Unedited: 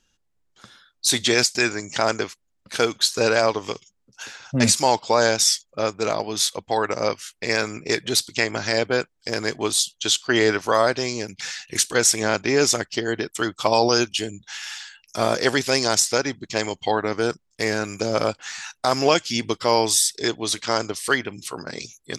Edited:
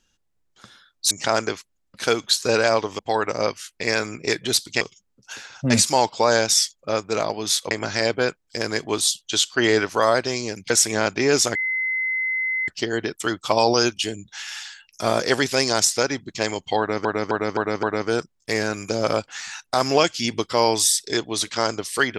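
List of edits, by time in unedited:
1.11–1.83 cut
6.61–8.43 move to 3.71
11.42–11.98 cut
12.83 add tone 2050 Hz -21 dBFS 1.13 s
16.94–17.2 loop, 5 plays

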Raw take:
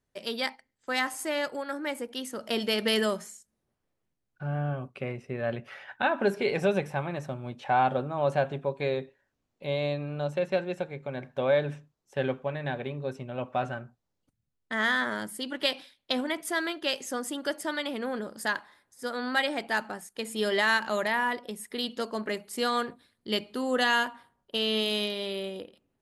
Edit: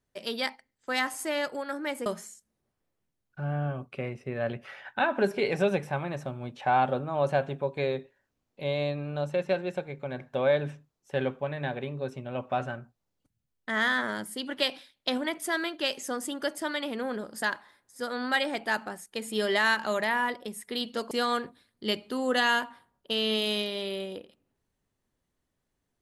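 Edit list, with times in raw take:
2.06–3.09 cut
22.14–22.55 cut

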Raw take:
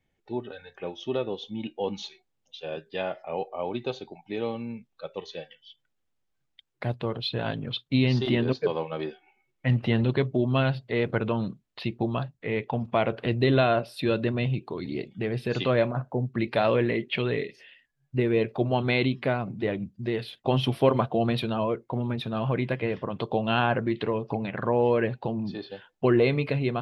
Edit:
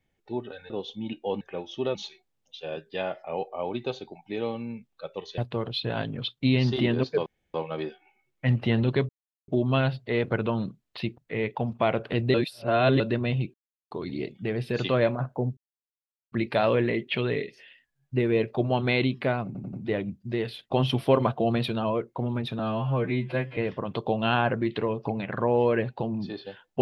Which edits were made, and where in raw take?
0.7–1.24 move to 1.95
5.38–6.87 cut
8.75 insert room tone 0.28 s
10.3 insert silence 0.39 s
12–12.31 cut
13.47–14.13 reverse
14.67 insert silence 0.37 s
16.33 insert silence 0.75 s
19.47 stutter 0.09 s, 4 plays
22.33–22.82 stretch 2×

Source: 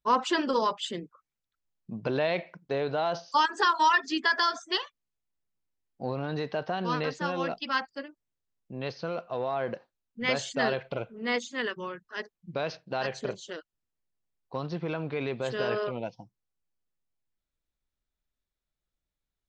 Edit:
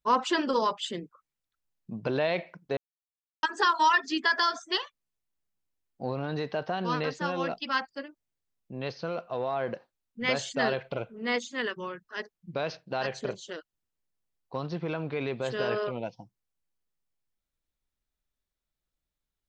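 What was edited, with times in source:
2.77–3.43 mute

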